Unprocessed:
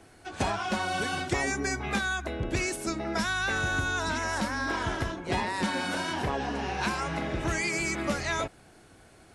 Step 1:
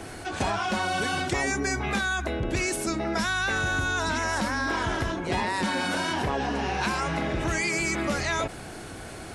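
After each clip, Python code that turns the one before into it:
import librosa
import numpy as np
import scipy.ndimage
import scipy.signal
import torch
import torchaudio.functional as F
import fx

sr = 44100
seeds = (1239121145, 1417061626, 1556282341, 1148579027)

y = fx.env_flatten(x, sr, amount_pct=50)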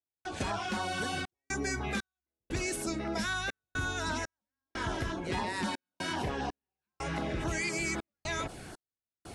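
y = fx.filter_lfo_notch(x, sr, shape='saw_down', hz=3.9, low_hz=480.0, high_hz=2700.0, q=2.2)
y = fx.step_gate(y, sr, bpm=60, pattern='.xxxx.xx.', floor_db=-60.0, edge_ms=4.5)
y = F.gain(torch.from_numpy(y), -5.5).numpy()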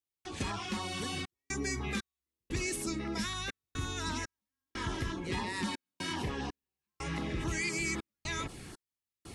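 y = fx.peak_eq(x, sr, hz=660.0, db=-11.0, octaves=0.68)
y = fx.notch(y, sr, hz=1500.0, q=6.9)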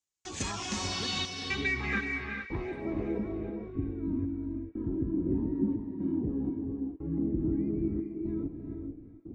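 y = fx.filter_sweep_lowpass(x, sr, from_hz=7000.0, to_hz=300.0, start_s=0.66, end_s=3.6, q=3.7)
y = fx.echo_banded(y, sr, ms=377, feedback_pct=50, hz=2600.0, wet_db=-12.5)
y = fx.rev_gated(y, sr, seeds[0], gate_ms=480, shape='rising', drr_db=4.0)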